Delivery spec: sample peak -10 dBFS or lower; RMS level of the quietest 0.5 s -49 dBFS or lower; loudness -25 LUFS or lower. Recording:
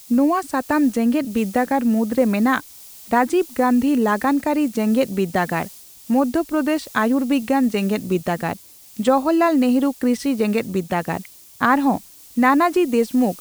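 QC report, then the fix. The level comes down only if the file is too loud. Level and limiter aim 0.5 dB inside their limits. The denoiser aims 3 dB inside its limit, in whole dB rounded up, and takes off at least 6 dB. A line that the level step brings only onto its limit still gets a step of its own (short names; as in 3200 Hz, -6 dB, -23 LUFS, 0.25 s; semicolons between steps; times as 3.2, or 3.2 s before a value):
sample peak -4.0 dBFS: fail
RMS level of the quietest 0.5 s -42 dBFS: fail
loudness -19.5 LUFS: fail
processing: denoiser 6 dB, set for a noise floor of -42 dBFS; gain -6 dB; limiter -10.5 dBFS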